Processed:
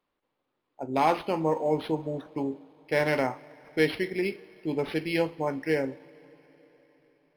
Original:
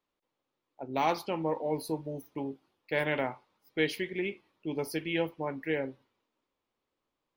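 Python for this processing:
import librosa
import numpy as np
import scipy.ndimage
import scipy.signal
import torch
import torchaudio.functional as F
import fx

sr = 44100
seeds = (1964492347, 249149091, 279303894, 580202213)

y = fx.rev_double_slope(x, sr, seeds[0], early_s=0.24, late_s=4.6, knee_db=-21, drr_db=12.5)
y = np.interp(np.arange(len(y)), np.arange(len(y))[::6], y[::6])
y = F.gain(torch.from_numpy(y), 5.0).numpy()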